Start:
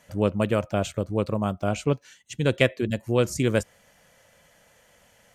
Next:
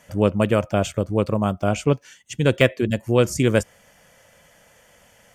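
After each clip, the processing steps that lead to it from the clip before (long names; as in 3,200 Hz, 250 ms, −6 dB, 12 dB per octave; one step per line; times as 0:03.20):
de-essing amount 50%
notch filter 4,000 Hz, Q 8.5
level +4.5 dB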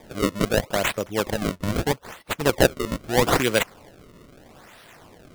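RIAA equalisation recording
sample-and-hold swept by an LFO 31×, swing 160% 0.78 Hz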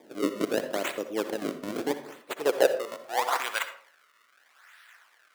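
high-pass filter sweep 310 Hz → 1,500 Hz, 0:02.11–0:03.92
convolution reverb RT60 0.50 s, pre-delay 55 ms, DRR 9.5 dB
level −9 dB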